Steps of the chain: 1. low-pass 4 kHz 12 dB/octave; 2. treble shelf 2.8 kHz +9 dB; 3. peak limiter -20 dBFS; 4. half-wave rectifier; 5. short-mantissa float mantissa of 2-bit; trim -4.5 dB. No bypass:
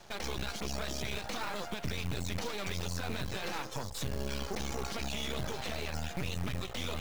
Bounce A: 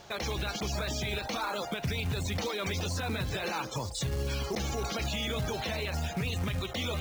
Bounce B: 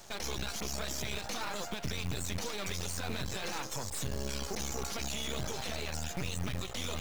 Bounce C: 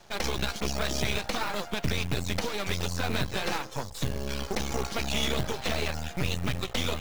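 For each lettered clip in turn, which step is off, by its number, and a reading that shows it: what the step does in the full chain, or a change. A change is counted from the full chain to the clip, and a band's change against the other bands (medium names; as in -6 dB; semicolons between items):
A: 4, crest factor change -3.0 dB; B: 1, 8 kHz band +6.5 dB; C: 3, mean gain reduction 5.0 dB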